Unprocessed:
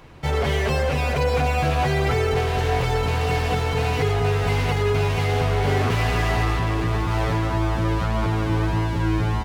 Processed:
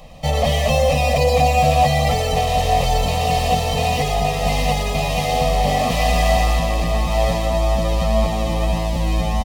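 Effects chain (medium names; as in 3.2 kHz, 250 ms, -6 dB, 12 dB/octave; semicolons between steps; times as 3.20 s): static phaser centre 390 Hz, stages 6; comb 1.6 ms, depth 62%; on a send: feedback echo behind a high-pass 117 ms, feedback 49%, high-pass 5 kHz, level -3 dB; on the sum: trim +7 dB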